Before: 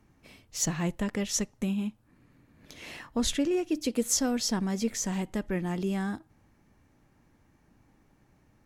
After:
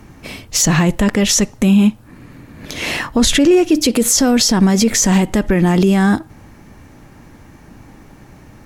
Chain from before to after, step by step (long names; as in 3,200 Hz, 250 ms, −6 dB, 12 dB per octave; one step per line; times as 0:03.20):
boost into a limiter +26 dB
level −3.5 dB